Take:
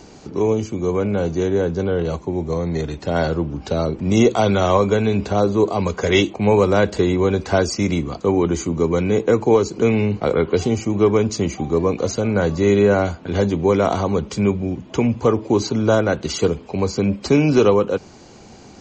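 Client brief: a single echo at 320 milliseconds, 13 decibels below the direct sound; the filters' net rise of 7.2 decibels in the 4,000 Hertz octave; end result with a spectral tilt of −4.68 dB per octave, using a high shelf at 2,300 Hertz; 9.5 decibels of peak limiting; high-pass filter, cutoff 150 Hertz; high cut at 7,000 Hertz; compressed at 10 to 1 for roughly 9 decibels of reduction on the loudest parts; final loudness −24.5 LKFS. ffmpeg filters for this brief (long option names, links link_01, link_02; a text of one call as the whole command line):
ffmpeg -i in.wav -af "highpass=150,lowpass=7000,highshelf=frequency=2300:gain=6,equalizer=frequency=4000:width_type=o:gain=4,acompressor=threshold=-19dB:ratio=10,alimiter=limit=-19dB:level=0:latency=1,aecho=1:1:320:0.224,volume=3.5dB" out.wav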